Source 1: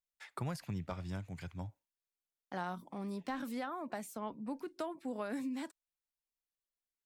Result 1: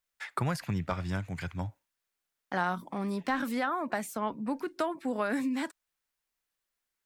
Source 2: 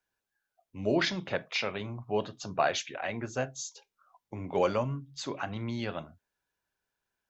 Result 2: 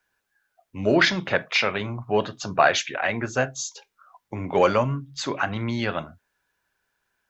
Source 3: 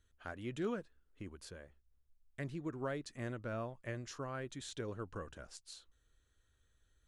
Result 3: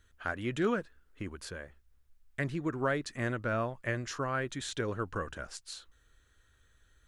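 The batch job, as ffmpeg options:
-filter_complex "[0:a]asplit=2[a][b];[b]asoftclip=type=tanh:threshold=-20.5dB,volume=-11.5dB[c];[a][c]amix=inputs=2:normalize=0,equalizer=f=1.6k:w=1.1:g=5.5,volume=5.5dB"

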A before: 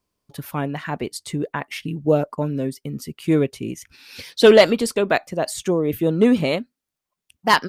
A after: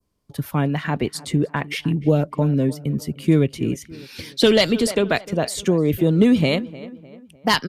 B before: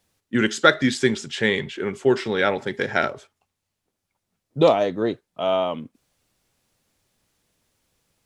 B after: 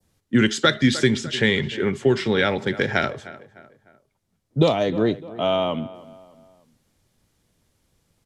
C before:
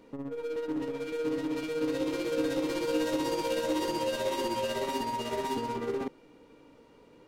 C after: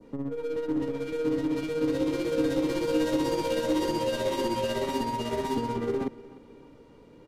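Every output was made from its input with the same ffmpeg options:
-filter_complex "[0:a]aresample=32000,aresample=44100,bandreject=f=2.6k:w=24,asplit=2[a][b];[b]adelay=302,lowpass=f=3.4k:p=1,volume=-20dB,asplit=2[c][d];[d]adelay=302,lowpass=f=3.4k:p=1,volume=0.44,asplit=2[e][f];[f]adelay=302,lowpass=f=3.4k:p=1,volume=0.44[g];[a][c][e][g]amix=inputs=4:normalize=0,adynamicequalizer=threshold=0.0158:dfrequency=2800:dqfactor=0.71:tfrequency=2800:tqfactor=0.71:attack=5:release=100:ratio=0.375:range=2.5:mode=boostabove:tftype=bell,acrossover=split=160|3000[h][i][j];[i]acompressor=threshold=-20dB:ratio=3[k];[h][k][j]amix=inputs=3:normalize=0,lowshelf=f=320:g=9"

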